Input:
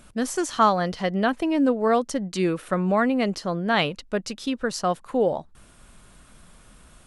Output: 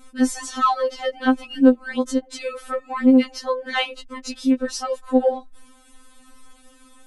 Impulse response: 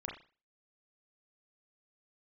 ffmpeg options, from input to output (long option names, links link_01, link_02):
-af "acontrast=77,afftfilt=real='re*3.46*eq(mod(b,12),0)':imag='im*3.46*eq(mod(b,12),0)':win_size=2048:overlap=0.75,volume=-3.5dB"